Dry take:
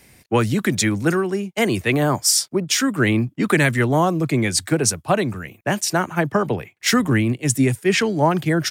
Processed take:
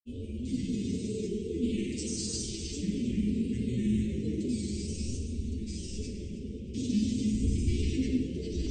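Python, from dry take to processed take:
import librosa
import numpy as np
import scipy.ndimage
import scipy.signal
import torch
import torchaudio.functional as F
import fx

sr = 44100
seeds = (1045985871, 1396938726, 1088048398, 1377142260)

y = fx.spec_steps(x, sr, hold_ms=400)
y = fx.dmg_wind(y, sr, seeds[0], corner_hz=100.0, level_db=-31.0)
y = scipy.signal.sosfilt(scipy.signal.cheby2(4, 50, [690.0, 1600.0], 'bandstop', fs=sr, output='sos'), y)
y = fx.peak_eq(y, sr, hz=1300.0, db=-12.5, octaves=0.53)
y = fx.comb_fb(y, sr, f0_hz=76.0, decay_s=0.24, harmonics='odd', damping=0.0, mix_pct=100)
y = fx.granulator(y, sr, seeds[1], grain_ms=100.0, per_s=20.0, spray_ms=100.0, spread_st=3)
y = fx.brickwall_lowpass(y, sr, high_hz=8900.0)
y = fx.echo_feedback(y, sr, ms=315, feedback_pct=36, wet_db=-15.0)
y = fx.room_shoebox(y, sr, seeds[2], volume_m3=1600.0, walls='mixed', distance_m=2.0)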